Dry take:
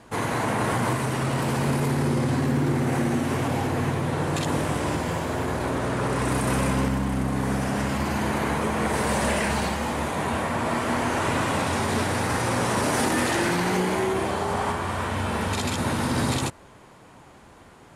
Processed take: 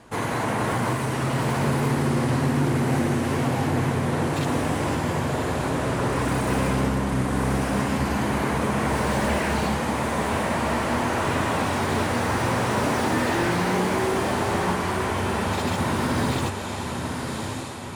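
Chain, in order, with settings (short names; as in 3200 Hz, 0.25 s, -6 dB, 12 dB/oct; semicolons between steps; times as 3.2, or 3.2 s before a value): diffused feedback echo 1.137 s, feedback 46%, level -5.5 dB; slew limiter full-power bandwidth 120 Hz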